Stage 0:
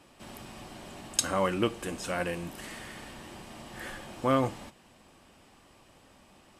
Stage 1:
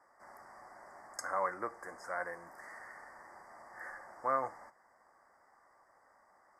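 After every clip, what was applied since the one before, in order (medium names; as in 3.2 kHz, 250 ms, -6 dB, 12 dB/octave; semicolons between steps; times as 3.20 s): Chebyshev band-stop 2–4.8 kHz, order 4; three-band isolator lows -23 dB, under 590 Hz, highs -16 dB, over 2.7 kHz; trim -1.5 dB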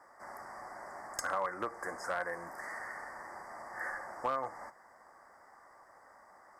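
compression 4:1, threshold -39 dBFS, peak gain reduction 11 dB; one-sided clip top -35 dBFS; trim +7.5 dB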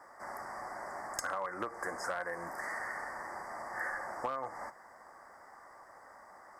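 compression 6:1, threshold -37 dBFS, peak gain reduction 8 dB; trim +4 dB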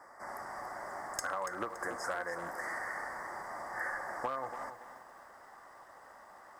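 bit-crushed delay 284 ms, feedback 35%, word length 10-bit, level -10.5 dB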